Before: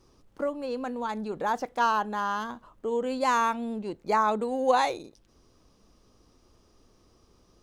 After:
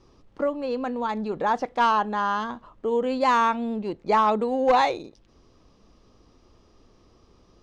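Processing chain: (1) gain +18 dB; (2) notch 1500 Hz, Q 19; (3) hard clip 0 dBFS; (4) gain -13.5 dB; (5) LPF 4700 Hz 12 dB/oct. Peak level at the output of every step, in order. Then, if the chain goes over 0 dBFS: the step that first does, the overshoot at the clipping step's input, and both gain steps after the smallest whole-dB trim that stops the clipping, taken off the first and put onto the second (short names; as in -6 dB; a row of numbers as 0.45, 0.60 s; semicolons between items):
+7.0, +7.0, 0.0, -13.5, -13.0 dBFS; step 1, 7.0 dB; step 1 +11 dB, step 4 -6.5 dB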